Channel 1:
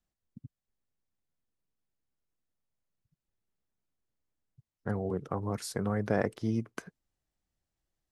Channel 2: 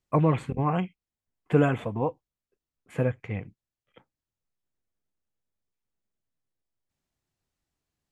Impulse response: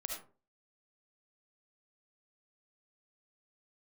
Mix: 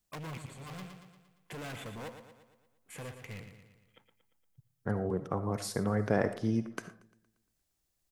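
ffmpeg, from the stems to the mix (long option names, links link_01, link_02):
-filter_complex "[0:a]volume=-2.5dB,asplit=4[link_01][link_02][link_03][link_04];[link_02]volume=-5dB[link_05];[link_03]volume=-18.5dB[link_06];[1:a]alimiter=limit=-18.5dB:level=0:latency=1:release=92,asoftclip=type=hard:threshold=-31dB,crystalizer=i=5.5:c=0,volume=-10dB,asplit=2[link_07][link_08];[link_08]volume=-9dB[link_09];[link_04]apad=whole_len=358062[link_10];[link_07][link_10]sidechaincompress=threshold=-55dB:ratio=4:attack=8.4:release=478[link_11];[2:a]atrim=start_sample=2205[link_12];[link_05][link_12]afir=irnorm=-1:irlink=0[link_13];[link_06][link_09]amix=inputs=2:normalize=0,aecho=0:1:116|232|348|464|580|696|812|928:1|0.53|0.281|0.149|0.0789|0.0418|0.0222|0.0117[link_14];[link_01][link_11][link_13][link_14]amix=inputs=4:normalize=0"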